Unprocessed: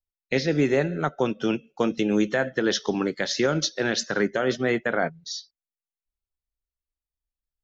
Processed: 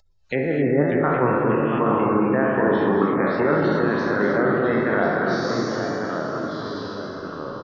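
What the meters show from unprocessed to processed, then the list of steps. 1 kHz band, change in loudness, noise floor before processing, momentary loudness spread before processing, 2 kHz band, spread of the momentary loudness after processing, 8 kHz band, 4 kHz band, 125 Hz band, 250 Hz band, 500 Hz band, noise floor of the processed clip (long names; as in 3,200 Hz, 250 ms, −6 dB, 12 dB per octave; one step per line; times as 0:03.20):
+10.0 dB, +4.0 dB, below −85 dBFS, 5 LU, +3.5 dB, 10 LU, can't be measured, −7.5 dB, +5.5 dB, +5.0 dB, +5.5 dB, −35 dBFS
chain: peak hold with a decay on every bin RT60 1.75 s
treble cut that deepens with the level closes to 1,600 Hz, closed at −19.5 dBFS
gate on every frequency bin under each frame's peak −30 dB strong
parametric band 1,100 Hz +8 dB 0.45 octaves
upward compression, threshold −39 dBFS
delay with pitch and tempo change per echo 554 ms, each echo −2 semitones, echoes 3, each echo −6 dB
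slap from a distant wall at 140 metres, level −7 dB
reverb whose tail is shaped and stops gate 290 ms rising, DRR 4.5 dB
downsampling to 16,000 Hz
level −2 dB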